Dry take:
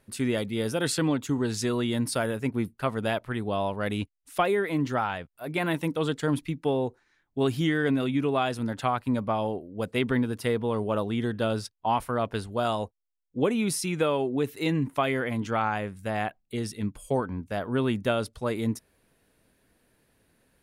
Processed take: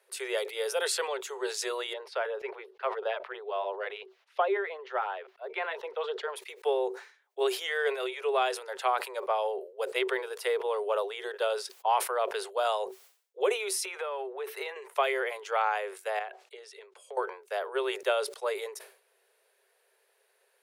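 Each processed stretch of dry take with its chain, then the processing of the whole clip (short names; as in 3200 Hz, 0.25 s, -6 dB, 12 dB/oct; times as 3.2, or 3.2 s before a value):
1.93–6.36 LFO notch sine 2.9 Hz 290–2400 Hz + air absorption 290 m
13.85–14.76 bell 1100 Hz +11 dB 2.5 oct + notch 7100 Hz, Q 6.5 + compressor 8:1, threshold -30 dBFS
16.19–17.17 compressor 10:1, threshold -36 dBFS + air absorption 70 m
whole clip: Chebyshev high-pass 380 Hz, order 10; sustainer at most 120 dB/s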